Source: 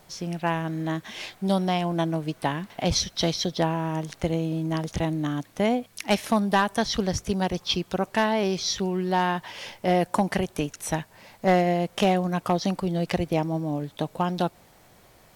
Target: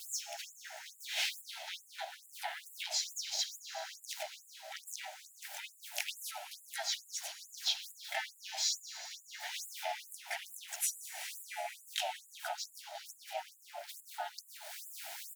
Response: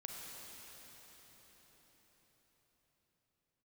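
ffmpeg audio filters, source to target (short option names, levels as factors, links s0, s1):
-filter_complex "[0:a]aeval=exprs='val(0)+0.5*0.0141*sgn(val(0))':c=same,agate=range=0.447:threshold=0.02:ratio=16:detection=peak,acompressor=threshold=0.0178:ratio=12,asplit=2[s0][s1];[s1]asetrate=52444,aresample=44100,atempo=0.840896,volume=0.891[s2];[s0][s2]amix=inputs=2:normalize=0,asuperstop=centerf=1100:order=4:qfactor=2,asplit=4[s3][s4][s5][s6];[s4]adelay=371,afreqshift=110,volume=0.0944[s7];[s5]adelay=742,afreqshift=220,volume=0.0407[s8];[s6]adelay=1113,afreqshift=330,volume=0.0174[s9];[s3][s7][s8][s9]amix=inputs=4:normalize=0,asplit=2[s10][s11];[1:a]atrim=start_sample=2205[s12];[s11][s12]afir=irnorm=-1:irlink=0,volume=0.794[s13];[s10][s13]amix=inputs=2:normalize=0,afftfilt=real='re*gte(b*sr/1024,560*pow(7100/560,0.5+0.5*sin(2*PI*2.3*pts/sr)))':imag='im*gte(b*sr/1024,560*pow(7100/560,0.5+0.5*sin(2*PI*2.3*pts/sr)))':win_size=1024:overlap=0.75"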